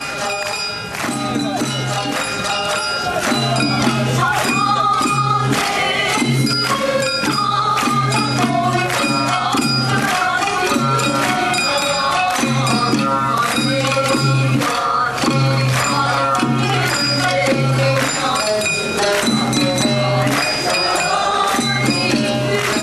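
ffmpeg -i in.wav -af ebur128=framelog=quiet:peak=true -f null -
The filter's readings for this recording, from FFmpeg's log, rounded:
Integrated loudness:
  I:         -16.2 LUFS
  Threshold: -26.2 LUFS
Loudness range:
  LRA:         1.1 LU
  Threshold: -36.1 LUFS
  LRA low:   -16.7 LUFS
  LRA high:  -15.7 LUFS
True peak:
  Peak:       -4.6 dBFS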